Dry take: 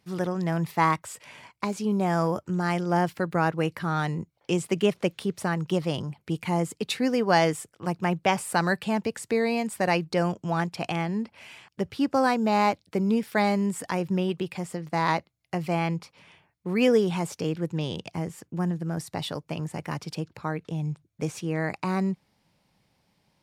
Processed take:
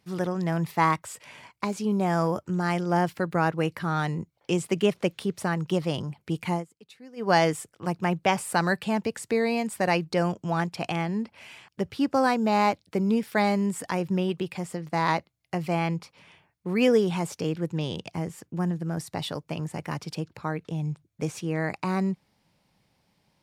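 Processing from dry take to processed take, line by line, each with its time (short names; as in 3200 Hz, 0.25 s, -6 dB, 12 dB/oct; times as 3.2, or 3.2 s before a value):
6.52–7.29 dip -22 dB, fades 0.13 s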